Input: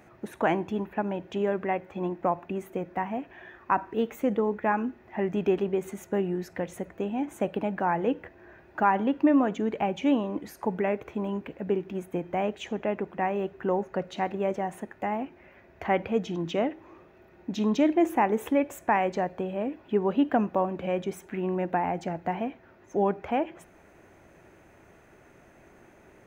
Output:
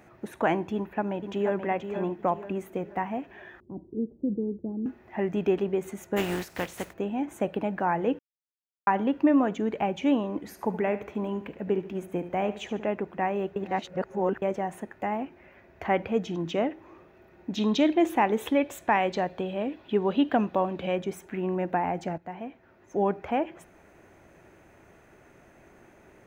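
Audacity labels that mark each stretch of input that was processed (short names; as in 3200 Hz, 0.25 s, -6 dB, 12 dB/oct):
0.740000	1.610000	echo throw 0.48 s, feedback 40%, level -7.5 dB
3.600000	4.860000	inverse Chebyshev low-pass stop band from 2200 Hz, stop band 80 dB
6.160000	6.920000	spectral contrast lowered exponent 0.51
8.190000	8.870000	mute
10.390000	12.890000	feedback echo 73 ms, feedback 38%, level -13.5 dB
13.560000	14.420000	reverse
17.570000	20.960000	bell 3700 Hz +11 dB 0.78 oct
22.180000	23.100000	fade in, from -12 dB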